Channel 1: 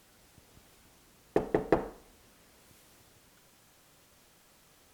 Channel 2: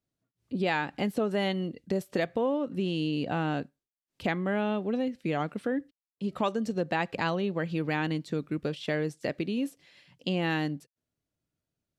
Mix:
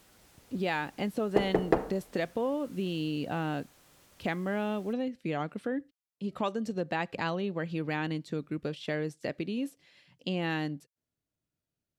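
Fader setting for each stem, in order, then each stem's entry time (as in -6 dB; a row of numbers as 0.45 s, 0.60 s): +1.0 dB, -3.0 dB; 0.00 s, 0.00 s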